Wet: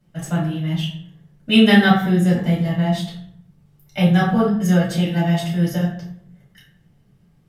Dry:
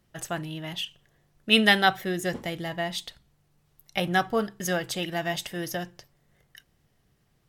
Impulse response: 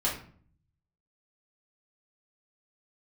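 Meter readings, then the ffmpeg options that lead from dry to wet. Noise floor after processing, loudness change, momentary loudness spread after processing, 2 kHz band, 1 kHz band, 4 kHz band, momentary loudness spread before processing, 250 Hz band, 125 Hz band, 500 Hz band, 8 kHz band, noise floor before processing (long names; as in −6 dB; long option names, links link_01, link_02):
−56 dBFS, +8.5 dB, 14 LU, +2.5 dB, +3.5 dB, +2.0 dB, 15 LU, +14.5 dB, +17.5 dB, +6.5 dB, 0.0 dB, −69 dBFS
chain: -filter_complex "[0:a]equalizer=frequency=170:width_type=o:width=1.4:gain=13[link_01];[1:a]atrim=start_sample=2205,asetrate=31311,aresample=44100[link_02];[link_01][link_02]afir=irnorm=-1:irlink=0,volume=-8dB"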